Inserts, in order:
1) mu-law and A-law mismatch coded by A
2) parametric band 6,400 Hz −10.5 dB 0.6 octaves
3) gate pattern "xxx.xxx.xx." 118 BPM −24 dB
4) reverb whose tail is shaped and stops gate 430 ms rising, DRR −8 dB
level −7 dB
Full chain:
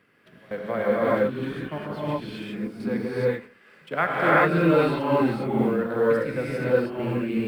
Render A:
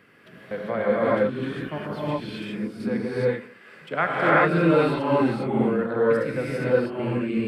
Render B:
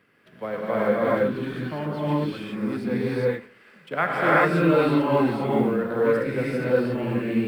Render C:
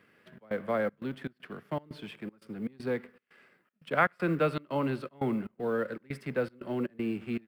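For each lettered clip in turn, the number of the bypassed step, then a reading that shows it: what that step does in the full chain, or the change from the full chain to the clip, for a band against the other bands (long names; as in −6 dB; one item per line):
1, distortion level −25 dB
3, change in momentary loudness spread −3 LU
4, change in crest factor +4.5 dB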